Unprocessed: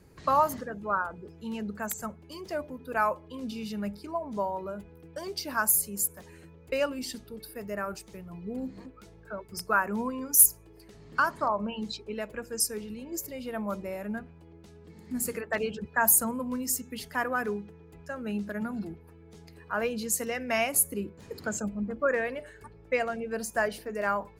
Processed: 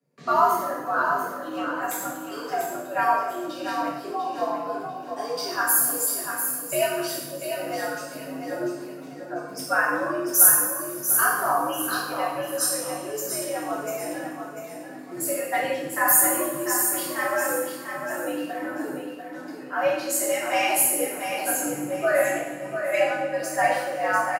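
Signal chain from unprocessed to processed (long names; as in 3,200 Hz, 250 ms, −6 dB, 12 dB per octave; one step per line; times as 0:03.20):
noise gate with hold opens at −42 dBFS
on a send: repeating echo 694 ms, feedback 31%, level −7 dB
on the sum: coupled-rooms reverb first 0.86 s, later 3.1 s, DRR −8.5 dB
frequency shifter +92 Hz
level −4 dB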